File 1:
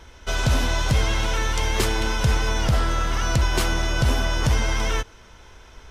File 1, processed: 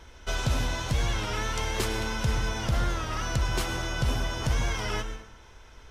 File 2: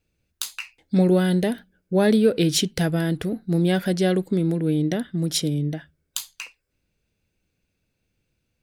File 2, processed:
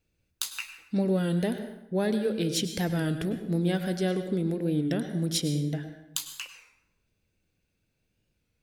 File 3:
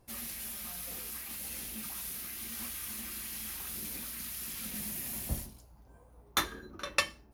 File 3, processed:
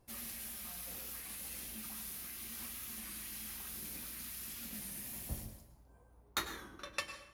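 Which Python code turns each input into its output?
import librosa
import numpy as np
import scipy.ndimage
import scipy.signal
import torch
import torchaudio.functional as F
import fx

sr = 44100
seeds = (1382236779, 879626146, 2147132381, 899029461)

y = fx.rider(x, sr, range_db=4, speed_s=0.5)
y = fx.rev_plate(y, sr, seeds[0], rt60_s=0.86, hf_ratio=0.7, predelay_ms=90, drr_db=8.5)
y = fx.record_warp(y, sr, rpm=33.33, depth_cents=100.0)
y = y * 10.0 ** (-6.5 / 20.0)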